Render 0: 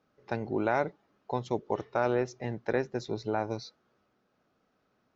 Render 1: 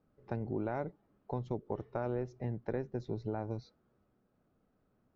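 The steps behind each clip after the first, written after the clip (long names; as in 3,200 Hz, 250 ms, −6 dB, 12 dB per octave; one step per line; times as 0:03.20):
spectral tilt −3.5 dB per octave
downward compressor 2 to 1, threshold −29 dBFS, peak gain reduction 6.5 dB
level −6.5 dB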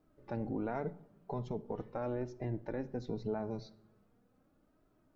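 brickwall limiter −29.5 dBFS, peak gain reduction 7.5 dB
flanger 0.41 Hz, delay 2.9 ms, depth 2.3 ms, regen +28%
rectangular room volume 2,100 cubic metres, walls furnished, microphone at 0.52 metres
level +7 dB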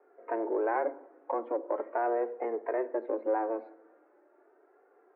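in parallel at −6 dB: soft clipping −40 dBFS, distortion −7 dB
on the sum: single-sideband voice off tune +110 Hz 240–2,000 Hz
level +7 dB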